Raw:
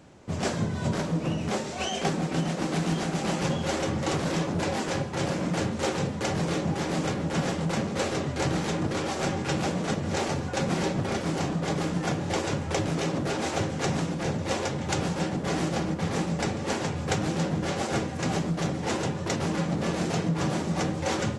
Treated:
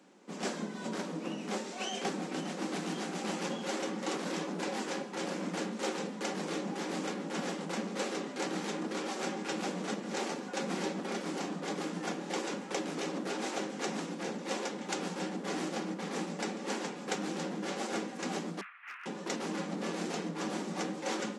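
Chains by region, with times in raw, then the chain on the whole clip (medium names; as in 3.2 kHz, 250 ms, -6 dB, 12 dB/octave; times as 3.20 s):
18.61–19.06 s: elliptic band-pass 1.2–2.6 kHz, stop band 60 dB + hard clipper -33 dBFS
whole clip: Chebyshev high-pass 190 Hz, order 5; band-stop 640 Hz, Q 12; trim -6 dB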